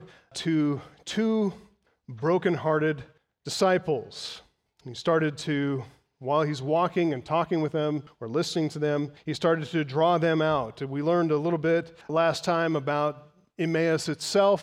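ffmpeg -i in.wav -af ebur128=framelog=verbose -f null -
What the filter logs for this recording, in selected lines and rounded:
Integrated loudness:
  I:         -26.6 LUFS
  Threshold: -37.1 LUFS
Loudness range:
  LRA:         2.8 LU
  Threshold: -47.1 LUFS
  LRA low:   -28.4 LUFS
  LRA high:  -25.5 LUFS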